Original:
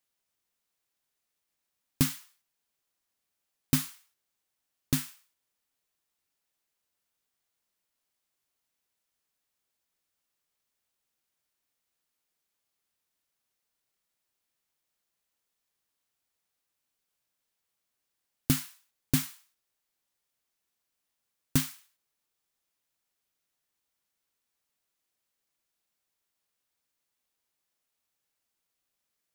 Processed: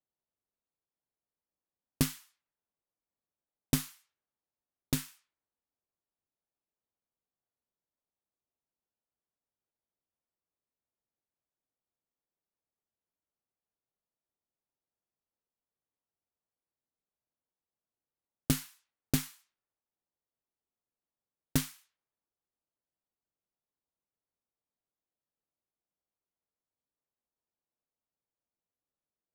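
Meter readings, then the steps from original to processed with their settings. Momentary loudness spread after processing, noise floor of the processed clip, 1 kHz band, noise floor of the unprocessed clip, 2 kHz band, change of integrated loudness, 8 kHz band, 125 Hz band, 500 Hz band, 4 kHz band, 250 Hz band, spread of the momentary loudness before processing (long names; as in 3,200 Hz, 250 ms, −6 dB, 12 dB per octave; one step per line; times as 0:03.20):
14 LU, below −85 dBFS, −2.0 dB, −84 dBFS, −3.0 dB, −3.5 dB, −3.0 dB, −3.0 dB, +2.0 dB, −2.5 dB, −3.0 dB, 12 LU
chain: harmonic generator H 3 −18 dB, 8 −28 dB, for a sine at −9 dBFS
low-pass that shuts in the quiet parts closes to 830 Hz, open at −36.5 dBFS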